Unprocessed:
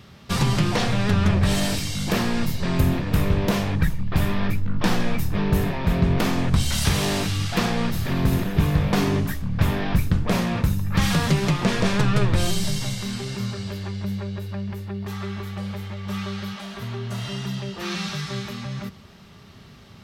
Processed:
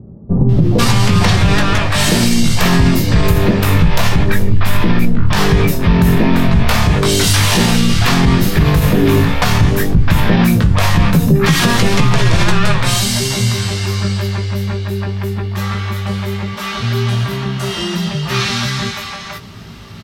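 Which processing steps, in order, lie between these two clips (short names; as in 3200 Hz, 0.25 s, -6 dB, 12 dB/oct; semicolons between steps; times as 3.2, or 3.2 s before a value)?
doubler 18 ms -6 dB; bands offset in time lows, highs 0.49 s, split 560 Hz; maximiser +13 dB; gain -1 dB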